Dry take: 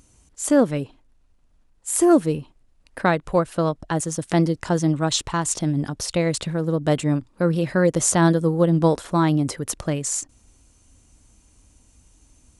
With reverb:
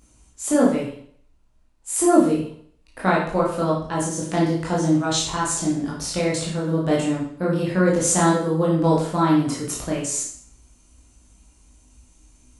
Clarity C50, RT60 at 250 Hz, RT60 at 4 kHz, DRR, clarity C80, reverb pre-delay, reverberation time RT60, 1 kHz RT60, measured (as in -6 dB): 3.5 dB, 0.55 s, 0.55 s, -5.5 dB, 7.0 dB, 16 ms, 0.55 s, 0.55 s